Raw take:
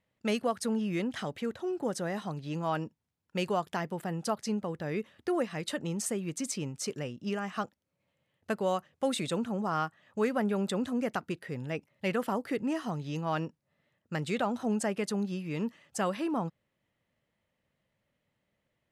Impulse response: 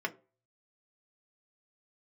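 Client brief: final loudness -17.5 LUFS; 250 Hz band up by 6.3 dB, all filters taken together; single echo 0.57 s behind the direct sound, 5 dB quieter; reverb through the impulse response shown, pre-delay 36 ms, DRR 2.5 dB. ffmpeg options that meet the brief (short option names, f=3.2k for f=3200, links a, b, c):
-filter_complex "[0:a]equalizer=f=250:t=o:g=8,aecho=1:1:570:0.562,asplit=2[a][b];[1:a]atrim=start_sample=2205,adelay=36[c];[b][c]afir=irnorm=-1:irlink=0,volume=-8dB[d];[a][d]amix=inputs=2:normalize=0,volume=10dB"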